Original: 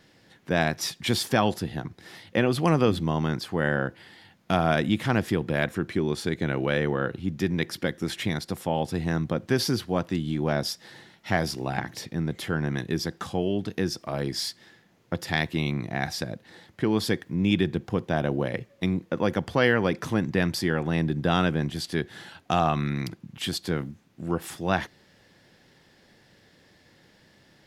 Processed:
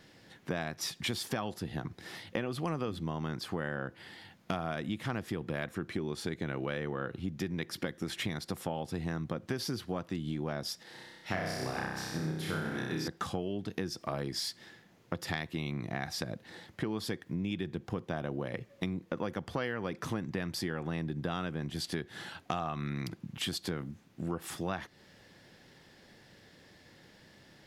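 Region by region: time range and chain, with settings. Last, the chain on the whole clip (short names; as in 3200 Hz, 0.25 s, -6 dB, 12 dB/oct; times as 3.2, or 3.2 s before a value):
10.83–13.08 low shelf 110 Hz -6 dB + flutter echo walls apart 5.4 m, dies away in 1.2 s + upward expander, over -32 dBFS
whole clip: compressor 6:1, threshold -32 dBFS; dynamic EQ 1200 Hz, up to +4 dB, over -57 dBFS, Q 5.2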